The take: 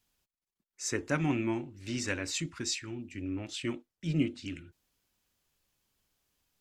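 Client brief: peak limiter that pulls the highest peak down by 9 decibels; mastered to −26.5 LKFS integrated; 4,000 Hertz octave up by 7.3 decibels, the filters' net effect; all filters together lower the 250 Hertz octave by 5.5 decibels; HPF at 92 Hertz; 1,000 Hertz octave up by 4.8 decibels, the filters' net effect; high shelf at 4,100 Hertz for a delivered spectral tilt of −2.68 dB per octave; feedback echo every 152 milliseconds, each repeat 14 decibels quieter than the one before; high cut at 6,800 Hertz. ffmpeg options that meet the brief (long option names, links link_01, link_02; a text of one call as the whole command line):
ffmpeg -i in.wav -af "highpass=92,lowpass=6800,equalizer=frequency=250:width_type=o:gain=-8,equalizer=frequency=1000:width_type=o:gain=6,equalizer=frequency=4000:width_type=o:gain=4,highshelf=frequency=4100:gain=9,alimiter=limit=-22dB:level=0:latency=1,aecho=1:1:152|304:0.2|0.0399,volume=8.5dB" out.wav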